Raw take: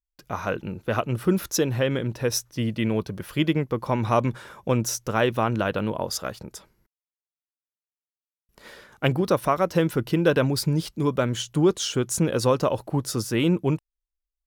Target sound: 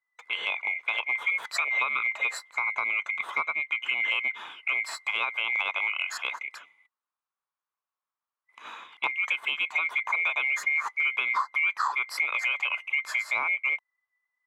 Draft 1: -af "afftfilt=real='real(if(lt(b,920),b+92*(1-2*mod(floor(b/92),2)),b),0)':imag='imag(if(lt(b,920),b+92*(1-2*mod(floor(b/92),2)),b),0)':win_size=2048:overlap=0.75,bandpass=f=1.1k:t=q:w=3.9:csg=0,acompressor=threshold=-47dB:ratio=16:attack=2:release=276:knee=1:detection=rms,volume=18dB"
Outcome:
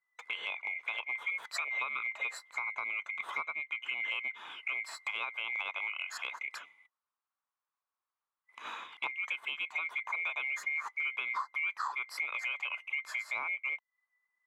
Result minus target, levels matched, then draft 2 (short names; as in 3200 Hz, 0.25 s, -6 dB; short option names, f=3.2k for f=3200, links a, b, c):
compressor: peak gain reduction +8.5 dB
-af "afftfilt=real='real(if(lt(b,920),b+92*(1-2*mod(floor(b/92),2)),b),0)':imag='imag(if(lt(b,920),b+92*(1-2*mod(floor(b/92),2)),b),0)':win_size=2048:overlap=0.75,bandpass=f=1.1k:t=q:w=3.9:csg=0,acompressor=threshold=-38dB:ratio=16:attack=2:release=276:knee=1:detection=rms,volume=18dB"